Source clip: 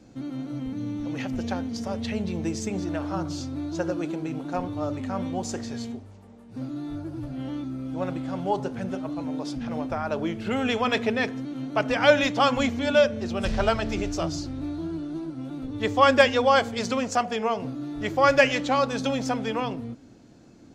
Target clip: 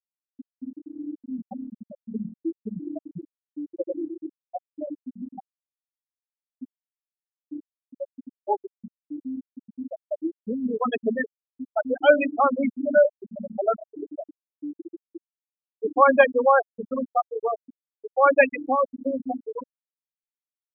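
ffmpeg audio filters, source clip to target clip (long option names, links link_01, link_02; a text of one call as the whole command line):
ffmpeg -i in.wav -filter_complex "[0:a]highpass=110,lowpass=5100,asplit=2[link_01][link_02];[link_02]adelay=961,lowpass=frequency=910:poles=1,volume=-20dB,asplit=2[link_03][link_04];[link_04]adelay=961,lowpass=frequency=910:poles=1,volume=0.41,asplit=2[link_05][link_06];[link_06]adelay=961,lowpass=frequency=910:poles=1,volume=0.41[link_07];[link_01][link_03][link_05][link_07]amix=inputs=4:normalize=0,afftfilt=real='re*gte(hypot(re,im),0.355)':imag='im*gte(hypot(re,im),0.355)':win_size=1024:overlap=0.75,volume=2.5dB" out.wav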